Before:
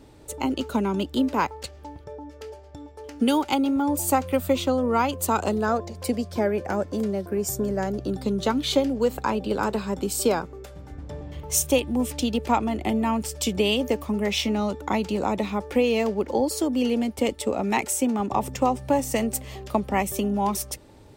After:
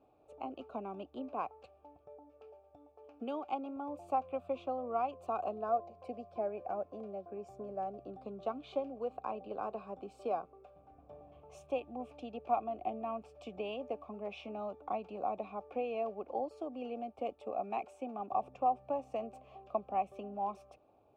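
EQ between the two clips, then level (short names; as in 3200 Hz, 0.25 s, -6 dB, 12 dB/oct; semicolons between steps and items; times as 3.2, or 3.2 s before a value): vowel filter a; tilt -3 dB/oct; -4.0 dB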